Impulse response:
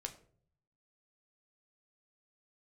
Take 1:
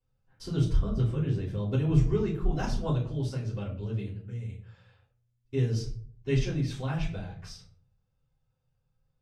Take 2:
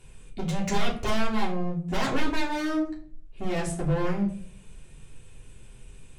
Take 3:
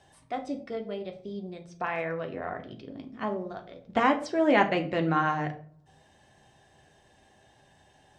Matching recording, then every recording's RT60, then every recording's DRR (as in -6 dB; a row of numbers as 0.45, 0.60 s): 3; 0.55, 0.55, 0.55 s; -14.0, -4.5, 4.0 dB